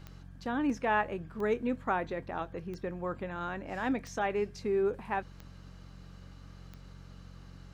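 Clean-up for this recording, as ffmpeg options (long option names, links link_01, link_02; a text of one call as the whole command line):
ffmpeg -i in.wav -af "adeclick=threshold=4,bandreject=frequency=45.5:width_type=h:width=4,bandreject=frequency=91:width_type=h:width=4,bandreject=frequency=136.5:width_type=h:width=4,bandreject=frequency=182:width_type=h:width=4" out.wav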